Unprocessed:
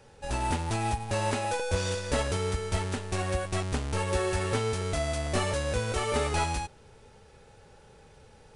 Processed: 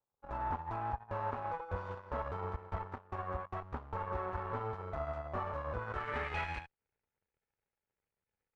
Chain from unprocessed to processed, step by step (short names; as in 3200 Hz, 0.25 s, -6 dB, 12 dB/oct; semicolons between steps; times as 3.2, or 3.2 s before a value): added harmonics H 7 -17 dB, 8 -35 dB, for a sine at -16 dBFS; limiter -23 dBFS, peak gain reduction 8 dB; dynamic EQ 310 Hz, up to -5 dB, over -49 dBFS, Q 0.86; low-pass sweep 1100 Hz -> 2200 Hz, 5.73–6.33; gain -4.5 dB